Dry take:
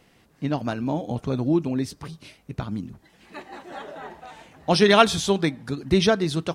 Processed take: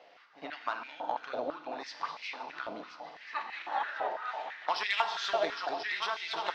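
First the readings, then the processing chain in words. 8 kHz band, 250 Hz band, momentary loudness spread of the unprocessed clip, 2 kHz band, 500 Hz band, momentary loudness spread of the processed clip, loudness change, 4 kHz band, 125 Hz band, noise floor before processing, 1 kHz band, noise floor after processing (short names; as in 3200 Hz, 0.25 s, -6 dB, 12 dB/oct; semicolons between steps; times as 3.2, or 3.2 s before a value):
-17.5 dB, -25.5 dB, 23 LU, -5.0 dB, -13.5 dB, 11 LU, -12.5 dB, -9.5 dB, under -35 dB, -60 dBFS, -5.0 dB, -57 dBFS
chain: regenerating reverse delay 0.518 s, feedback 60%, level -11 dB; inverse Chebyshev low-pass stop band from 9200 Hz, stop band 40 dB; compressor 10:1, threshold -28 dBFS, peak gain reduction 18.5 dB; added harmonics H 3 -18 dB, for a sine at -17.5 dBFS; reverse echo 66 ms -16 dB; FDN reverb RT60 1.8 s, low-frequency decay 0.85×, high-frequency decay 1×, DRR 6.5 dB; stepped high-pass 6 Hz 620–2200 Hz; gain +2.5 dB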